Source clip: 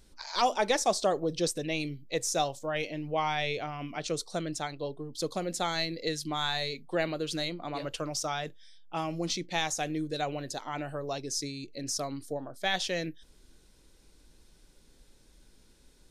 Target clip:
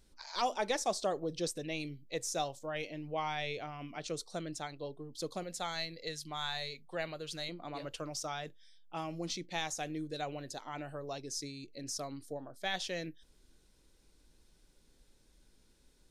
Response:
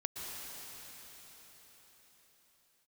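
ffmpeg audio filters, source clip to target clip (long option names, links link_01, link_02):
-filter_complex "[0:a]asettb=1/sr,asplit=3[link_01][link_02][link_03];[link_01]atrim=end=5.434[link_04];[link_02]atrim=start=5.43:end=7.49,asetpts=PTS-STARTPTS,afade=type=in:duration=0.004:curve=qsin,afade=type=out:start_time=2.056:duration=0.004:curve=qsin,equalizer=frequency=290:width=1.3:gain=-8.5[link_05];[link_03]atrim=start=7.486[link_06];[link_04][link_05]acrossfade=duration=0.004:curve1=hsin:curve2=qsin[link_07];[link_07][link_06]acrossfade=duration=0.004:curve1=qsin:curve2=hsin,volume=-6.5dB"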